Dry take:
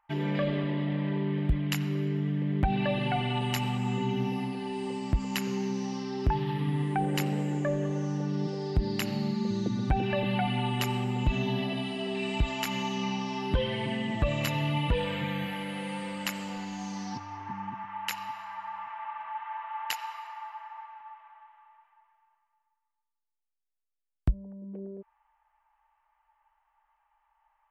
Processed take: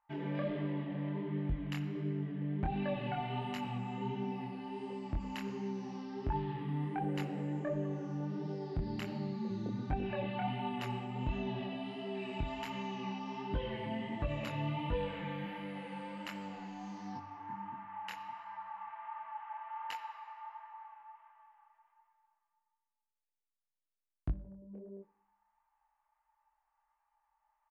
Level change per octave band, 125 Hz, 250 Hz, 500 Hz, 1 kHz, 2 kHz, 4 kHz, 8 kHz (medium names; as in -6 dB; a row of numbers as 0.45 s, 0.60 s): -9.0 dB, -8.0 dB, -7.5 dB, -6.5 dB, -10.5 dB, -13.0 dB, under -15 dB